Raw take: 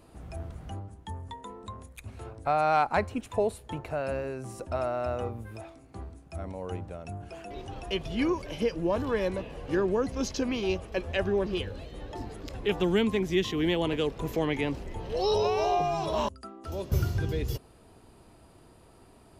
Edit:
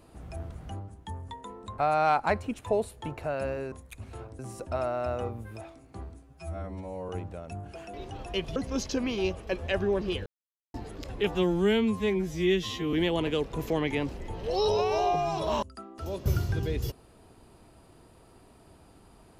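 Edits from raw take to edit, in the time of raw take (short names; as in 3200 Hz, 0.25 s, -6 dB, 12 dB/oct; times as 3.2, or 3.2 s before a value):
1.78–2.45 move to 4.39
6.23–6.66 stretch 2×
8.13–10.01 cut
11.71–12.19 mute
12.8–13.59 stretch 2×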